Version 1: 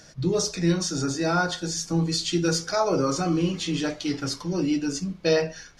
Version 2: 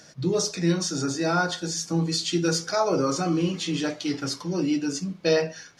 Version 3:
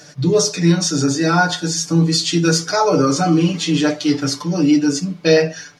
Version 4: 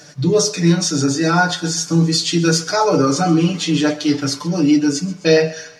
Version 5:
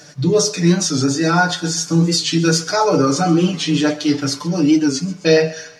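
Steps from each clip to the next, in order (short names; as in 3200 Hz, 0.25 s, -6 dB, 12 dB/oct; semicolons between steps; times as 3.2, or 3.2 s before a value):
HPF 120 Hz 12 dB/oct
comb 6.8 ms, depth 88%; gain +6 dB
thinning echo 0.131 s, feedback 56%, high-pass 580 Hz, level -18 dB
record warp 45 rpm, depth 100 cents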